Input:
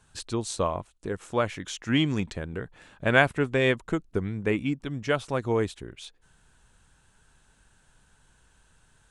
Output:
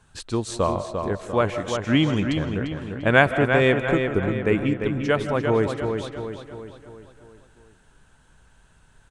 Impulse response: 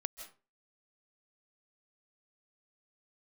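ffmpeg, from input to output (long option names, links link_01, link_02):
-filter_complex "[0:a]asplit=2[link_01][link_02];[link_02]adelay=347,lowpass=frequency=4000:poles=1,volume=-6dB,asplit=2[link_03][link_04];[link_04]adelay=347,lowpass=frequency=4000:poles=1,volume=0.51,asplit=2[link_05][link_06];[link_06]adelay=347,lowpass=frequency=4000:poles=1,volume=0.51,asplit=2[link_07][link_08];[link_08]adelay=347,lowpass=frequency=4000:poles=1,volume=0.51,asplit=2[link_09][link_10];[link_10]adelay=347,lowpass=frequency=4000:poles=1,volume=0.51,asplit=2[link_11][link_12];[link_12]adelay=347,lowpass=frequency=4000:poles=1,volume=0.51[link_13];[link_01][link_03][link_05][link_07][link_09][link_11][link_13]amix=inputs=7:normalize=0,asplit=2[link_14][link_15];[1:a]atrim=start_sample=2205,highshelf=frequency=4200:gain=-11[link_16];[link_15][link_16]afir=irnorm=-1:irlink=0,volume=6.5dB[link_17];[link_14][link_17]amix=inputs=2:normalize=0,volume=-4.5dB"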